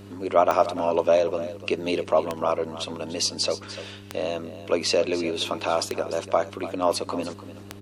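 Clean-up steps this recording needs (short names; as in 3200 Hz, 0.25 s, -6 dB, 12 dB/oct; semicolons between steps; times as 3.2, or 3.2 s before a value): de-click; de-hum 99.7 Hz, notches 4; inverse comb 0.295 s -14 dB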